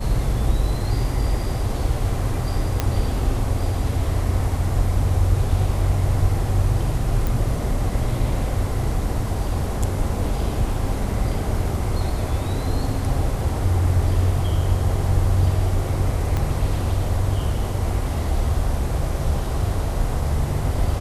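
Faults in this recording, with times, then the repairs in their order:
2.80 s: pop -6 dBFS
7.27 s: pop
16.37 s: pop -12 dBFS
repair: de-click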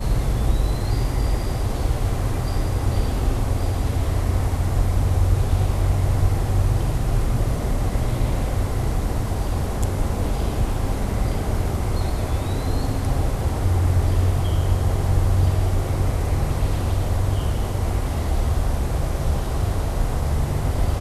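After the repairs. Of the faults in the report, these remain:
16.37 s: pop

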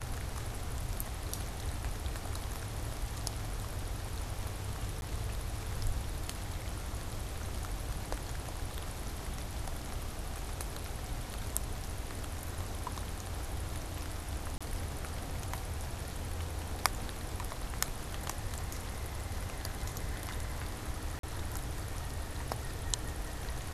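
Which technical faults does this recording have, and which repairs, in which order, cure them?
5.01–5.02 s: dropout 11 ms
14.58–14.61 s: dropout 26 ms
21.19–21.23 s: dropout 43 ms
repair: interpolate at 5.01 s, 11 ms; interpolate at 14.58 s, 26 ms; interpolate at 21.19 s, 43 ms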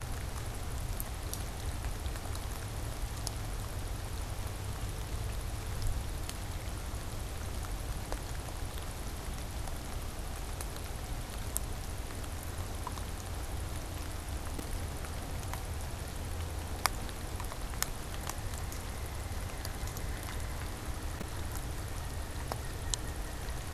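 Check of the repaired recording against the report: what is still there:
nothing left

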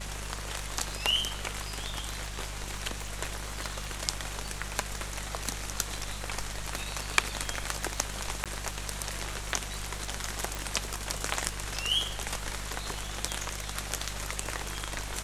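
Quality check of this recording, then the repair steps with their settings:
crackle 52 per s -39 dBFS
hum 50 Hz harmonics 4 -40 dBFS
8.44–8.46 s: dropout 17 ms
10.55 s: pop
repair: de-click; de-hum 50 Hz, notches 4; interpolate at 8.44 s, 17 ms

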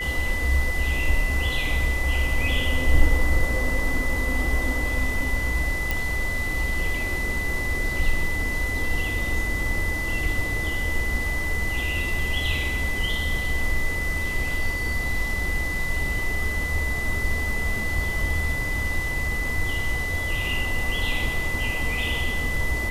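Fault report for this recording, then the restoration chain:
whine 2 kHz -27 dBFS
5.91 s: pop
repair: de-click; band-stop 2 kHz, Q 30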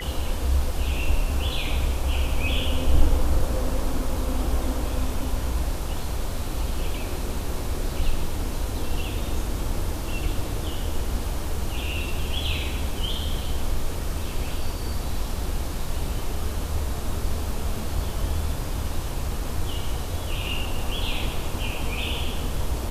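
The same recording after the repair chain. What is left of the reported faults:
nothing left

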